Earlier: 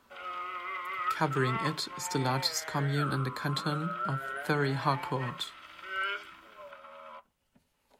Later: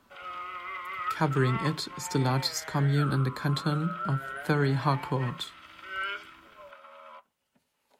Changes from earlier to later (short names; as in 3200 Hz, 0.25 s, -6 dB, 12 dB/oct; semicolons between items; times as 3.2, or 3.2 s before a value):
background: add HPF 590 Hz 6 dB/oct; master: add low shelf 330 Hz +7 dB